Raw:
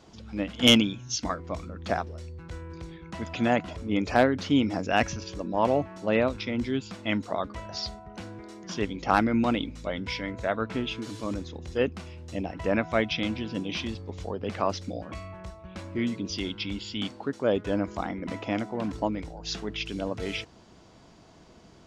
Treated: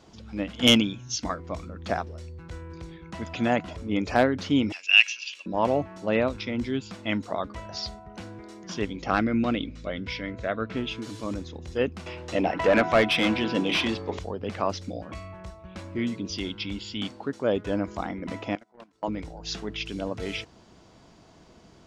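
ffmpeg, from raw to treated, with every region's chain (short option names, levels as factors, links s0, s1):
-filter_complex "[0:a]asettb=1/sr,asplit=3[s0][s1][s2];[s0]atrim=end=4.724[s3];[s1]atrim=start=4.72:end=5.46,asetpts=PTS-STARTPTS,afade=t=in:d=0.004:c=qsin,afade=t=out:st=0.736:d=0.004:c=qsin,highpass=f=2700:t=q:w=8.7,highshelf=f=10000:g=-3[s4];[s2]atrim=start=5.456[s5];[s3][s4]acrossfade=d=0.004:c1=hsin:c2=qsin[s6];[s6][s5]acrossfade=d=0.004:c1=qsin:c2=hsin,asettb=1/sr,asplit=3[s7][s8][s9];[s7]atrim=end=9.084[s10];[s8]atrim=start=9.08:end=10.77,asetpts=PTS-STARTPTS,afade=t=in:d=0.004:c=qsin,afade=t=out:st=1.686:d=0.004:c=qsin,lowpass=5200,equalizer=f=890:t=o:w=0.31:g=-10.5[s11];[s9]atrim=start=10.766[s12];[s10][s11]acrossfade=d=0.004:c1=hsin:c2=qsin[s13];[s13][s12]acrossfade=d=0.004:c1=qsin:c2=hsin,asettb=1/sr,asplit=3[s14][s15][s16];[s14]atrim=end=12.064[s17];[s15]atrim=start=12.06:end=14.19,asetpts=PTS-STARTPTS,afade=t=in:d=0.004:c=qsin,afade=t=out:st=2.126:d=0.004:c=qsin,bandreject=f=50:t=h:w=6,bandreject=f=100:t=h:w=6,bandreject=f=150:t=h:w=6,bandreject=f=200:t=h:w=6,bandreject=f=250:t=h:w=6,bandreject=f=300:t=h:w=6,bandreject=f=350:t=h:w=6,bandreject=f=400:t=h:w=6,asplit=2[s18][s19];[s19]highpass=f=720:p=1,volume=12.6,asoftclip=type=tanh:threshold=0.355[s20];[s18][s20]amix=inputs=2:normalize=0,lowpass=f=1900:p=1,volume=0.501[s21];[s16]atrim=start=14.186[s22];[s17][s21]acrossfade=d=0.004:c1=hsin:c2=qsin[s23];[s23][s22]acrossfade=d=0.004:c1=qsin:c2=hsin,asettb=1/sr,asplit=3[s24][s25][s26];[s24]atrim=end=18.554[s27];[s25]atrim=start=18.55:end=19.08,asetpts=PTS-STARTPTS,afade=t=in:d=0.004:c=qsin,afade=t=out:st=0.526:d=0.004:c=qsin,highpass=f=540:p=1,acompressor=mode=upward:threshold=0.0251:ratio=2.5:attack=3.2:release=140:knee=2.83:detection=peak,agate=range=0.0447:threshold=0.0224:ratio=16:release=100:detection=peak[s28];[s26]atrim=start=19.076[s29];[s27][s28]acrossfade=d=0.004:c1=hsin:c2=qsin[s30];[s30][s29]acrossfade=d=0.004:c1=qsin:c2=hsin"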